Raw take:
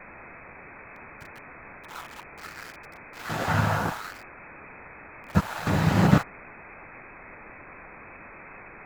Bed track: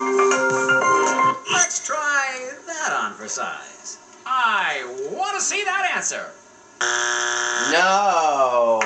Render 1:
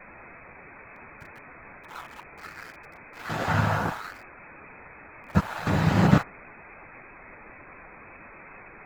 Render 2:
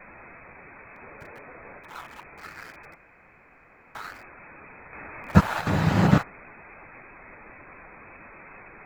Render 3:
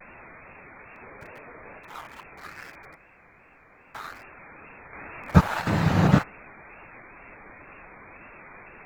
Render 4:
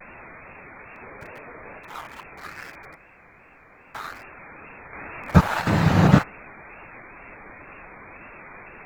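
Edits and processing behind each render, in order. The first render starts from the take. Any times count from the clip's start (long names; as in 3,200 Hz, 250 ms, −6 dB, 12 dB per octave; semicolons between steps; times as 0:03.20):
broadband denoise 6 dB, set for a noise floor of −46 dBFS
0:01.03–0:01.80: parametric band 490 Hz +8 dB 0.89 octaves; 0:02.95–0:03.95: fill with room tone; 0:04.93–0:05.61: clip gain +6 dB
tape wow and flutter 110 cents
level +3.5 dB; brickwall limiter −1 dBFS, peak gain reduction 3 dB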